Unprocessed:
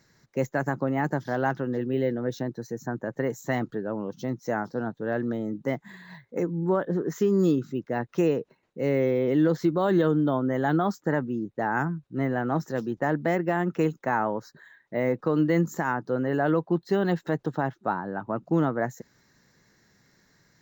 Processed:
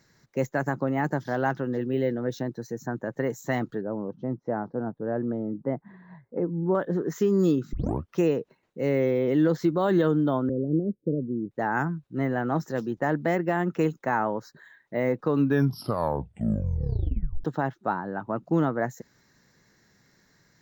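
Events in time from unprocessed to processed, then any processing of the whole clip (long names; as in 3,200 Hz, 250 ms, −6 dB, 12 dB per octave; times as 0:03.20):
0:03.81–0:06.75: low-pass filter 1,000 Hz
0:07.73: tape start 0.42 s
0:10.49–0:11.51: Butterworth low-pass 530 Hz 72 dB per octave
0:15.23: tape stop 2.21 s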